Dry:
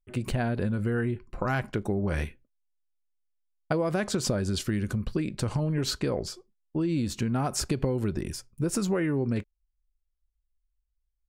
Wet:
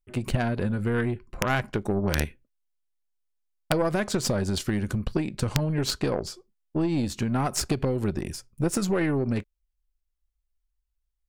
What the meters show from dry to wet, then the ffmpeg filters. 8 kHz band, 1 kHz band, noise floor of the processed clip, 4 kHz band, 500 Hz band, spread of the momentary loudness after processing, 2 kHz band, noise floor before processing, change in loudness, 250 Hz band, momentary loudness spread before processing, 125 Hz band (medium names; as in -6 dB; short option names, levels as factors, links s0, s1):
+2.0 dB, +3.5 dB, -79 dBFS, +2.5 dB, +2.0 dB, 6 LU, +3.5 dB, -79 dBFS, +2.0 dB, +1.5 dB, 6 LU, +1.5 dB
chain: -af "aeval=exprs='0.237*(cos(1*acos(clip(val(0)/0.237,-1,1)))-cos(1*PI/2))+0.0841*(cos(2*acos(clip(val(0)/0.237,-1,1)))-cos(2*PI/2))+0.0133*(cos(7*acos(clip(val(0)/0.237,-1,1)))-cos(7*PI/2))':c=same,aeval=exprs='(mod(4.47*val(0)+1,2)-1)/4.47':c=same,volume=1.58"